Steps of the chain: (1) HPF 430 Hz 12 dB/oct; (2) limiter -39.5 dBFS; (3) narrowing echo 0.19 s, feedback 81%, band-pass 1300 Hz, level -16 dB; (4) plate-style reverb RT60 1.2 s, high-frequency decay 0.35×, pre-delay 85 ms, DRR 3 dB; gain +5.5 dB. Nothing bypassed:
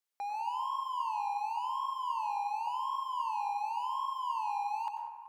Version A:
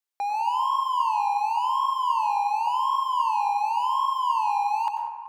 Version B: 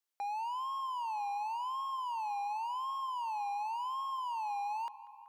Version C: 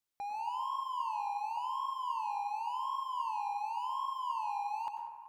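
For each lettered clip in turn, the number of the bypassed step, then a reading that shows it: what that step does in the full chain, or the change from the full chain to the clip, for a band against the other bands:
2, mean gain reduction 10.5 dB; 4, crest factor change -4.0 dB; 1, loudness change -1.5 LU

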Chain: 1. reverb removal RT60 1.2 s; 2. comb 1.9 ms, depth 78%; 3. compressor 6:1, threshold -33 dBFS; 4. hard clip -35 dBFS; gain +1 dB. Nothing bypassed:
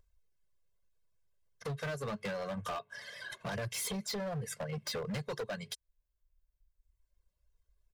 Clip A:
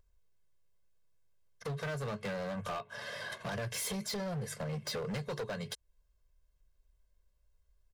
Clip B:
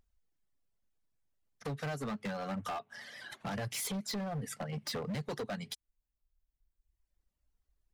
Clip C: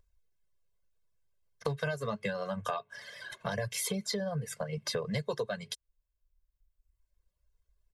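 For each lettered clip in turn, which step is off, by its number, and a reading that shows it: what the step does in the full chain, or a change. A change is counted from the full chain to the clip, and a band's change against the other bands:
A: 1, momentary loudness spread change -3 LU; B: 2, 250 Hz band +3.5 dB; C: 4, distortion -8 dB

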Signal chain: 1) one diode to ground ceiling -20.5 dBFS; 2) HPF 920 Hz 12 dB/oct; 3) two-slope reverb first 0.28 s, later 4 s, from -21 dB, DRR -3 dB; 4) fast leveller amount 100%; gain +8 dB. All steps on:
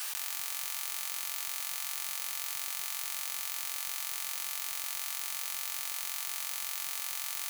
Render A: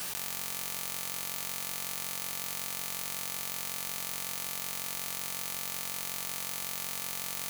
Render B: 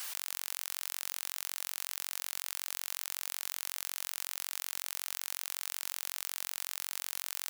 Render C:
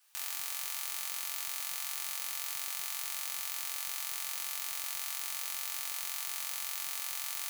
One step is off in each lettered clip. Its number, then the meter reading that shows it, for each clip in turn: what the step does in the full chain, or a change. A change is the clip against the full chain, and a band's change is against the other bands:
2, 500 Hz band +9.0 dB; 3, crest factor change +1.5 dB; 4, crest factor change -2.5 dB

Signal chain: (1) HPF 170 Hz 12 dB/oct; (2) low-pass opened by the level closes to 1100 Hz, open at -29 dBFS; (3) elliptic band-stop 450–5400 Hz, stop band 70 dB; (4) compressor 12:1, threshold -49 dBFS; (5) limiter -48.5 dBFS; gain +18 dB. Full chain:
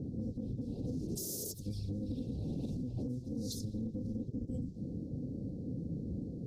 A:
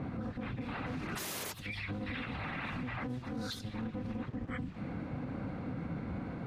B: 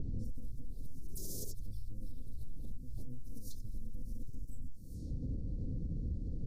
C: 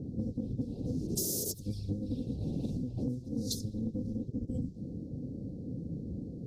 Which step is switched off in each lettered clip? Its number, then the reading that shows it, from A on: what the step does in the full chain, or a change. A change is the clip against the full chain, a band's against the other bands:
3, 4 kHz band +7.0 dB; 1, 125 Hz band +6.0 dB; 5, mean gain reduction 2.0 dB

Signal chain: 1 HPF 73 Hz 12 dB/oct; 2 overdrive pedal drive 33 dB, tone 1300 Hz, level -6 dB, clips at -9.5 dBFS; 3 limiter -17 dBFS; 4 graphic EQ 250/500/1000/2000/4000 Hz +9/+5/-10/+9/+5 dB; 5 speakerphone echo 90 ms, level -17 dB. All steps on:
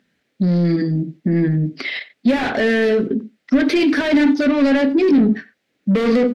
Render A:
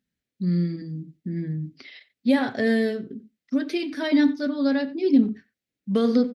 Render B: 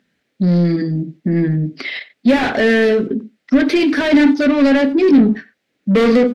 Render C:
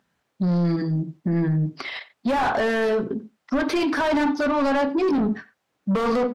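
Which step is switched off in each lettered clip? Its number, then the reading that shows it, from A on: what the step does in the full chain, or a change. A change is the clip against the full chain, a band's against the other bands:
2, 250 Hz band +2.0 dB; 3, mean gain reduction 1.5 dB; 4, crest factor change -3.0 dB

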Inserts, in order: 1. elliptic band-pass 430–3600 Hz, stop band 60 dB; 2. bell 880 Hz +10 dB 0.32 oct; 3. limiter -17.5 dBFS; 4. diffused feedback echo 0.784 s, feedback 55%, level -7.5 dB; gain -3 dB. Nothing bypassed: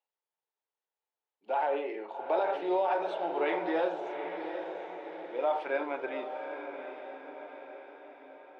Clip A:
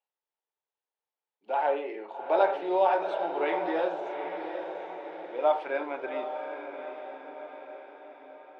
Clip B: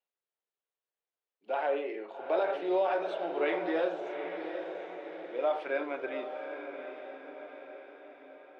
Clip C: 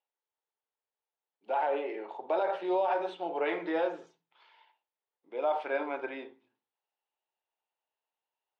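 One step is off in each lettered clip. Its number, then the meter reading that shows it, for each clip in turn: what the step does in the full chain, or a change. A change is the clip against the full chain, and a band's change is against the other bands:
3, crest factor change +5.5 dB; 2, 1 kHz band -4.0 dB; 4, echo-to-direct -6.0 dB to none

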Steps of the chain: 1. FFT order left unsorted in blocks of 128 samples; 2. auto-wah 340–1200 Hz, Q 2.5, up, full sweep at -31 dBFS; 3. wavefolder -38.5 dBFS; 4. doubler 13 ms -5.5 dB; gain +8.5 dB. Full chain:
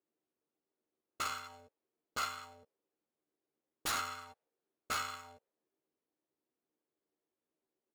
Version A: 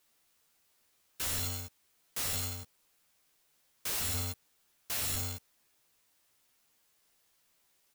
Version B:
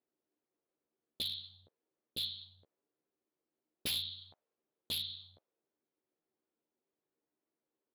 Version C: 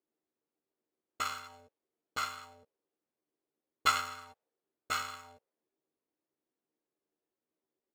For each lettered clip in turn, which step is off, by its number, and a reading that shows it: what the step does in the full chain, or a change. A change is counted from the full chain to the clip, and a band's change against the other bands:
2, 125 Hz band +15.0 dB; 1, 1 kHz band -24.5 dB; 3, crest factor change +9.5 dB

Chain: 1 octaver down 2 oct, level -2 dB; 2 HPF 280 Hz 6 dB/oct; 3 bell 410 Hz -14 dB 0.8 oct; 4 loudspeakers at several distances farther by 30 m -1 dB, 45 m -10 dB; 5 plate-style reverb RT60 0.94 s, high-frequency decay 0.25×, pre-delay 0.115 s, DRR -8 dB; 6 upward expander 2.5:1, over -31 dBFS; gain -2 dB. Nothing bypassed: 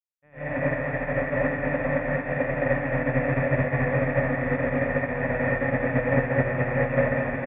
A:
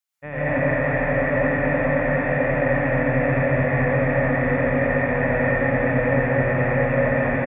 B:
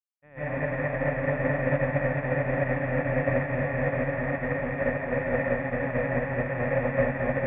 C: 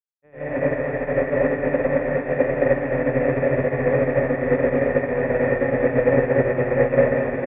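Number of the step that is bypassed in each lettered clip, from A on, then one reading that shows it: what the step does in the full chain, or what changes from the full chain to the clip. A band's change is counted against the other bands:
6, crest factor change -4.0 dB; 4, loudness change -2.5 LU; 3, 500 Hz band +6.5 dB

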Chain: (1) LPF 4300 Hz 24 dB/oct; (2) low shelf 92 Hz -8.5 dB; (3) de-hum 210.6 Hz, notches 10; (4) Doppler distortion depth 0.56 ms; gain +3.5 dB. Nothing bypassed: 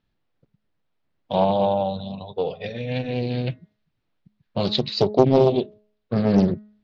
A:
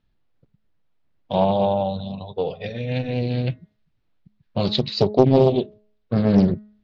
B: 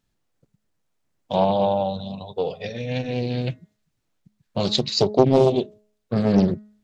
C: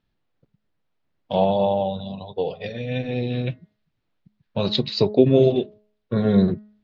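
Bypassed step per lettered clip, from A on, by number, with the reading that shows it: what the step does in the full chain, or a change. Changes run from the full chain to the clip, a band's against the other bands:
2, 125 Hz band +3.0 dB; 1, 4 kHz band +2.0 dB; 4, 1 kHz band -3.0 dB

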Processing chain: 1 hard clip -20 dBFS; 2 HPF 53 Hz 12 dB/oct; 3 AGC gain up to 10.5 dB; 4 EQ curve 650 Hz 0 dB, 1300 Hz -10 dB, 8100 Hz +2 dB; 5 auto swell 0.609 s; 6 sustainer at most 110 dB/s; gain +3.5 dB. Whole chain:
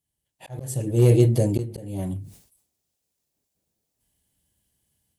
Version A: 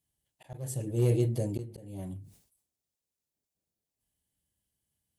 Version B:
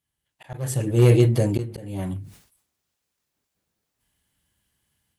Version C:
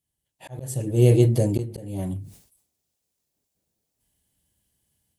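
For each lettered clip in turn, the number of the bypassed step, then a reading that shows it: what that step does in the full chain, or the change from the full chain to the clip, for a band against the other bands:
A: 3, 8 kHz band +2.0 dB; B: 4, 2 kHz band +6.5 dB; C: 1, distortion -18 dB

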